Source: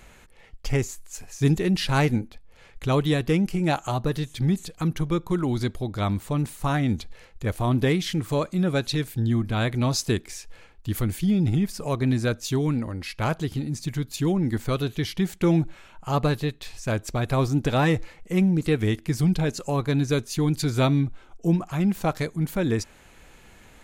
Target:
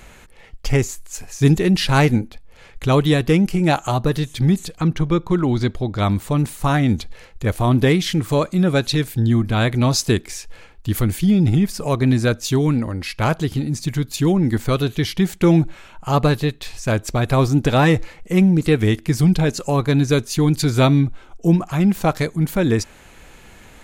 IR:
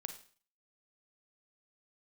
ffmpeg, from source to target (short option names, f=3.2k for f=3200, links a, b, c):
-filter_complex "[0:a]asettb=1/sr,asplit=3[a][b][c];[a]atrim=end=4.784[d];[b]atrim=start=4.78:end=5.99,asetpts=PTS-STARTPTS,afade=t=in:d=0.004:c=qsin,afade=t=out:st=1.206:d=0.004:c=qsin,equalizer=f=12k:t=o:w=0.96:g=-14.5[e];[c]atrim=start=5.986[f];[d][e]acrossfade=d=0.004:c1=hsin:c2=qsin[g];[g][f]acrossfade=d=0.004:c1=qsin:c2=hsin,volume=6.5dB"